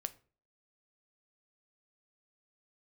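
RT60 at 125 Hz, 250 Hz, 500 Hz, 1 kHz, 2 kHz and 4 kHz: 0.45, 0.45, 0.45, 0.35, 0.35, 0.30 seconds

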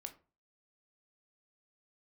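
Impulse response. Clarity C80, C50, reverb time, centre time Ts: 20.0 dB, 14.0 dB, 0.35 s, 7 ms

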